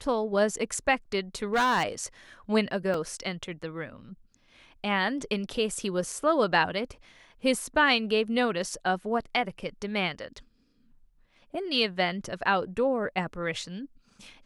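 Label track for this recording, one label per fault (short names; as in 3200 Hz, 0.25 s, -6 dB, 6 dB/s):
1.540000	1.830000	clipped -20 dBFS
2.940000	2.940000	gap 3.2 ms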